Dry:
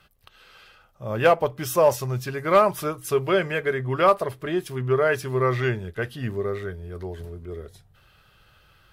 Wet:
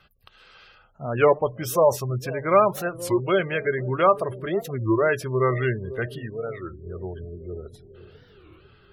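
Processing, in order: spectral gate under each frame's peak -25 dB strong; 6.18–6.86 low shelf 450 Hz -8 dB; analogue delay 0.497 s, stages 2048, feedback 61%, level -16 dB; record warp 33 1/3 rpm, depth 250 cents

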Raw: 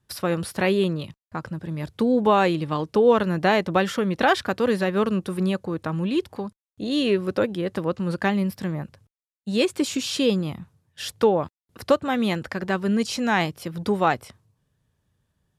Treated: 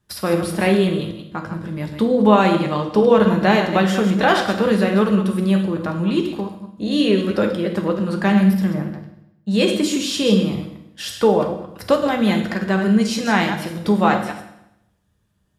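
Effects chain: reverse delay 0.111 s, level -8 dB; 8.83–9.51 bell 9400 Hz -13 dB 0.79 oct; reverb RT60 0.85 s, pre-delay 5 ms, DRR 3.5 dB; gain +2 dB

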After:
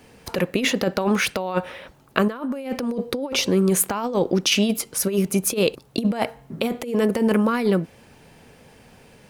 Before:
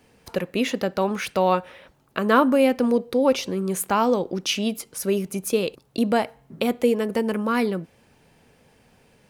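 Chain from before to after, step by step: negative-ratio compressor -24 dBFS, ratio -0.5; gain +4 dB

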